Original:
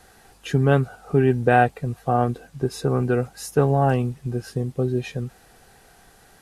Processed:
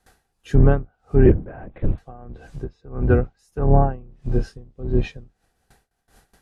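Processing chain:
sub-octave generator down 2 octaves, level +4 dB
noise gate with hold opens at −40 dBFS
treble cut that deepens with the level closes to 1,600 Hz, closed at −12.5 dBFS
0:01.26–0:01.98: linear-prediction vocoder at 8 kHz whisper
0:02.69–0:03.39: high-frequency loss of the air 91 metres
0:03.99–0:04.56: double-tracking delay 27 ms −9 dB
tremolo with a sine in dB 1.6 Hz, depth 28 dB
level +3.5 dB

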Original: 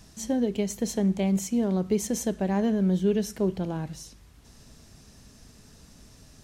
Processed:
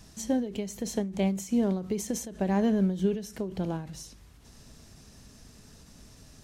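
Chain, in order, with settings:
every ending faded ahead of time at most 100 dB per second

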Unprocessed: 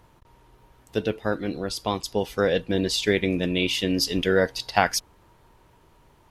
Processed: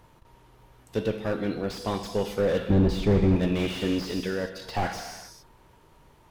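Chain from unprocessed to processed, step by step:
0:02.70–0:03.36: spectral tilt −4.5 dB per octave
0:04.11–0:04.62: output level in coarse steps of 14 dB
soft clipping −15 dBFS, distortion −9 dB
reverb whose tail is shaped and stops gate 460 ms falling, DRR 8 dB
slew-rate limiting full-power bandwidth 52 Hz

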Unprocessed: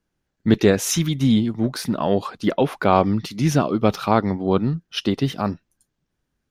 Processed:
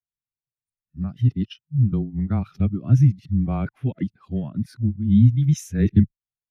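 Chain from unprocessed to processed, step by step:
played backwards from end to start
octave-band graphic EQ 125/500/1,000/2,000/4,000 Hz +8/−9/−9/+3/−4 dB
frequency shifter −16 Hz
every bin expanded away from the loudest bin 1.5 to 1

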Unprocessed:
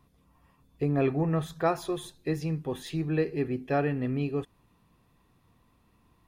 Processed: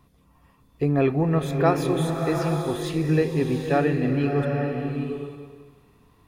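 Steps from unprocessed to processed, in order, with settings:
slow-attack reverb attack 800 ms, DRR 3 dB
level +5 dB

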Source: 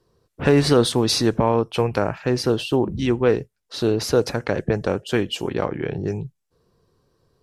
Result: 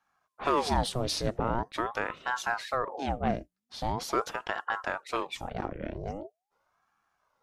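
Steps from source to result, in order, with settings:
ring modulator whose carrier an LFO sweeps 710 Hz, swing 75%, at 0.43 Hz
level −8 dB

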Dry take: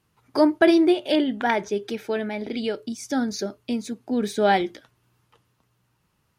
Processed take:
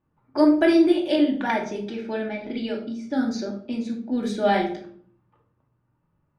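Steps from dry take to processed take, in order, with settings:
low-pass that shuts in the quiet parts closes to 1,200 Hz, open at −19 dBFS
rectangular room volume 740 cubic metres, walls furnished, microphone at 2.5 metres
level −5 dB

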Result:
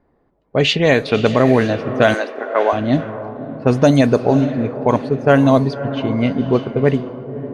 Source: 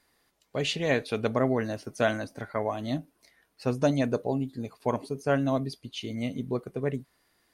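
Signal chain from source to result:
on a send: feedback delay with all-pass diffusion 560 ms, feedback 53%, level −12.5 dB
on the sum: low-pass that shuts in the quiet parts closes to 640 Hz, open at −20.5 dBFS
0:02.14–0:02.73: high-pass filter 340 Hz 24 dB per octave
boost into a limiter +15.5 dB
level −1 dB

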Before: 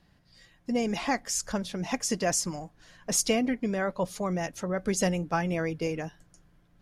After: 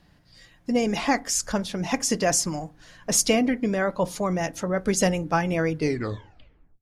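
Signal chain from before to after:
turntable brake at the end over 1.06 s
feedback delay network reverb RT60 0.32 s, low-frequency decay 1.4×, high-frequency decay 0.4×, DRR 15.5 dB
level +5 dB

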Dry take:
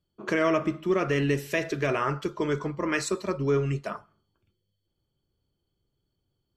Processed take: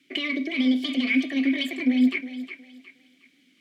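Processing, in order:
high-pass filter 94 Hz
notch filter 700 Hz, Q 13
in parallel at −1 dB: brickwall limiter −21.5 dBFS, peak gain reduction 9 dB
on the sum: downward compressor 4 to 1, threshold −26 dBFS, peak gain reduction 8.5 dB
sine wavefolder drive 4 dB, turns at −13.5 dBFS
background noise white −52 dBFS
change of speed 1.82×
formant filter i
on a send: feedback echo with a high-pass in the loop 362 ms, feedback 35%, high-pass 370 Hz, level −10 dB
on the sum: level +8.5 dB

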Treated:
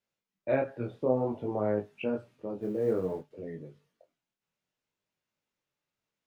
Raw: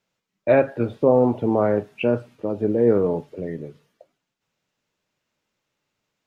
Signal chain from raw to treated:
0:02.60–0:03.31: mu-law and A-law mismatch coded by A
chorus effect 0.57 Hz, delay 19 ms, depth 5.4 ms
level −8 dB

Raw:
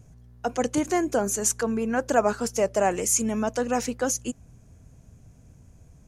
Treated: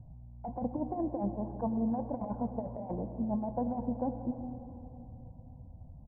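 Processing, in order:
Butterworth low-pass 950 Hz 48 dB per octave
comb filter 1.2 ms, depth 78%
compressor whose output falls as the input rises −26 dBFS, ratio −0.5
convolution reverb RT60 3.4 s, pre-delay 78 ms, DRR 8 dB
level −6.5 dB

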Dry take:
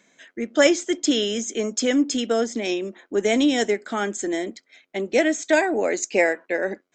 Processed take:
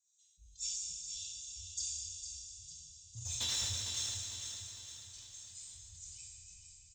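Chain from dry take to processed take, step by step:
frequency inversion band by band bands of 500 Hz
inverse Chebyshev band-stop filter 220–1,500 Hz, stop band 60 dB
treble cut that deepens with the level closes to 1,500 Hz, closed at −14.5 dBFS
drawn EQ curve 730 Hz 0 dB, 1,900 Hz −26 dB, 8,400 Hz +9 dB
in parallel at +2 dB: compressor whose output falls as the input rises −25 dBFS, ratio −0.5
on the sum: auto-filter band-pass sine 1.8 Hz 660–2,800 Hz
0:03.15–0:04.03: mid-hump overdrive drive 31 dB, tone 2,300 Hz, clips at −15 dBFS
repeating echo 454 ms, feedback 49%, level −7.5 dB
dense smooth reverb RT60 3.3 s, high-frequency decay 0.95×, DRR −0.5 dB
level that may fall only so fast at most 26 dB per second
level −5 dB

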